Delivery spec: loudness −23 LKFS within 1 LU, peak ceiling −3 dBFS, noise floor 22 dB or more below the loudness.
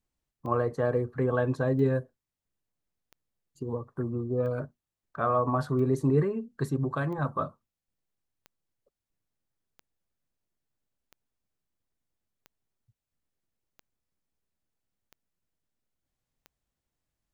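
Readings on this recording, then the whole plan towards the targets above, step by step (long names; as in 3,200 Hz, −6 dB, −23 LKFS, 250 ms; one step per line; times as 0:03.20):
number of clicks 13; integrated loudness −29.0 LKFS; sample peak −13.5 dBFS; target loudness −23.0 LKFS
→ click removal
level +6 dB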